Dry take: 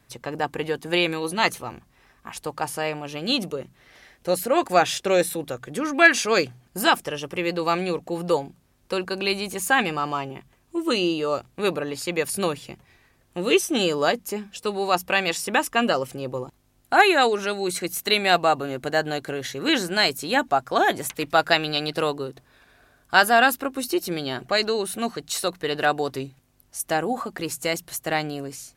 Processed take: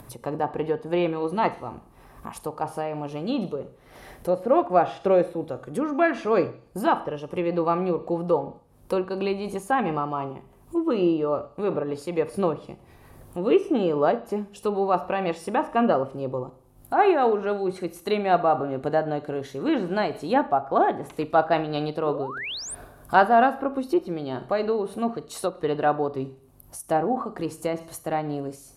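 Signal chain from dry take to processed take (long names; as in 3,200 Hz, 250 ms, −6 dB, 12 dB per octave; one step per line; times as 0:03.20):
flat-topped bell 3,400 Hz −11.5 dB 2.7 octaves
four-comb reverb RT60 0.46 s, combs from 27 ms, DRR 12 dB
upward compression, threshold −34 dBFS
treble cut that deepens with the level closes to 2,500 Hz, closed at −21.5 dBFS
sound drawn into the spectrogram rise, 0:22.04–0:22.75, 290–10,000 Hz −34 dBFS
amplitude modulation by smooth noise, depth 60%
level +3.5 dB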